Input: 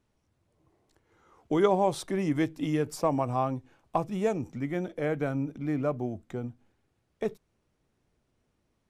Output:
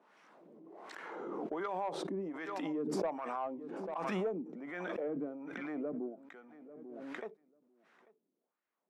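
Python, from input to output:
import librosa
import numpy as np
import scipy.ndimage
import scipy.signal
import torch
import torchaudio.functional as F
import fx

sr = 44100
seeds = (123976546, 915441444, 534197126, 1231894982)

y = scipy.signal.sosfilt(scipy.signal.ellip(4, 1.0, 40, 170.0, 'highpass', fs=sr, output='sos'), x)
y = fx.transient(y, sr, attack_db=-11, sustain_db=2, at=(3.06, 3.96))
y = fx.filter_lfo_bandpass(y, sr, shape='sine', hz=1.3, low_hz=270.0, high_hz=1700.0, q=1.7)
y = 10.0 ** (-23.0 / 20.0) * np.tanh(y / 10.0 ** (-23.0 / 20.0))
y = fx.echo_feedback(y, sr, ms=842, feedback_pct=32, wet_db=-23.5)
y = fx.pre_swell(y, sr, db_per_s=21.0)
y = y * librosa.db_to_amplitude(-4.5)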